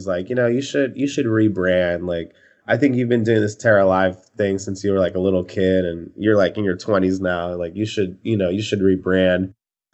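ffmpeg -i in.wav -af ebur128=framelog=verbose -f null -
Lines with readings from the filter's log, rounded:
Integrated loudness:
  I:         -19.4 LUFS
  Threshold: -29.6 LUFS
Loudness range:
  LRA:         2.0 LU
  Threshold: -39.4 LUFS
  LRA low:   -20.4 LUFS
  LRA high:  -18.4 LUFS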